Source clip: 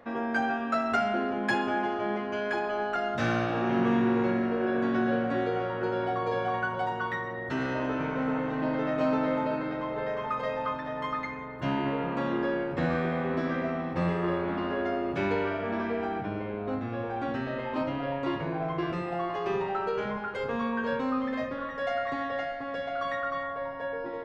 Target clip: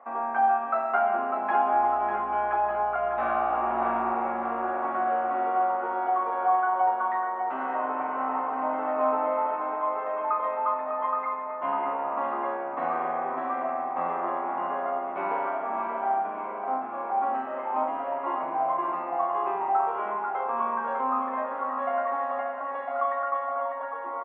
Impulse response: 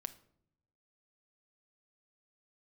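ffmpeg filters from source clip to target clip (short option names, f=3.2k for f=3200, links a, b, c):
-filter_complex "[0:a]highpass=f=320:w=0.5412,highpass=f=320:w=1.3066,equalizer=f=320:t=q:w=4:g=-9,equalizer=f=480:t=q:w=4:g=-9,equalizer=f=770:t=q:w=4:g=9,equalizer=f=1.1k:t=q:w=4:g=9,equalizer=f=1.7k:t=q:w=4:g=-8,lowpass=f=2k:w=0.5412,lowpass=f=2k:w=1.3066,asplit=2[a][b];[b]adelay=42,volume=-10.5dB[c];[a][c]amix=inputs=2:normalize=0,asettb=1/sr,asplit=3[d][e][f];[d]atrim=end=1.734[g];[e]atrim=start=1.73:end=4.13,asetpts=PTS-STARTPTS,afade=t=in:d=0.004:c=qsin,afade=t=out:st=2.396:d=0.004:c=qsin,aeval=exprs='val(0)+0.00158*(sin(2*PI*60*n/s)+sin(2*PI*2*60*n/s)/2+sin(2*PI*3*60*n/s)/3+sin(2*PI*4*60*n/s)/4+sin(2*PI*5*60*n/s)/5)':c=same[h];[f]atrim=start=4.126[i];[g][h]acrossfade=d=0.004:c1=hsin:c2=qsin[j];[j][i]acrossfade=d=0.004:c1=qsin:c2=hsin,aecho=1:1:599|1198|1797|2396|2995|3594|4193:0.422|0.232|0.128|0.0702|0.0386|0.0212|0.0117"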